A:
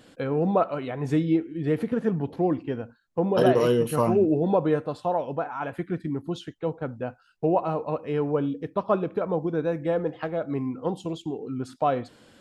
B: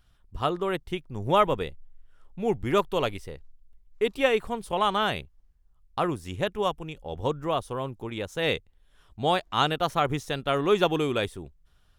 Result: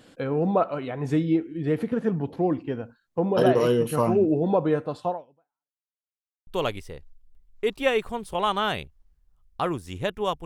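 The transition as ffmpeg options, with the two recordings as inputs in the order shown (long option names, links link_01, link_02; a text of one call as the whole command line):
ffmpeg -i cue0.wav -i cue1.wav -filter_complex "[0:a]apad=whole_dur=10.45,atrim=end=10.45,asplit=2[link_01][link_02];[link_01]atrim=end=5.87,asetpts=PTS-STARTPTS,afade=type=out:start_time=5.09:duration=0.78:curve=exp[link_03];[link_02]atrim=start=5.87:end=6.47,asetpts=PTS-STARTPTS,volume=0[link_04];[1:a]atrim=start=2.85:end=6.83,asetpts=PTS-STARTPTS,afade=type=in:duration=0.004:curve=hsin[link_05];[link_03][link_04][link_05]concat=n=3:v=0:a=1" out.wav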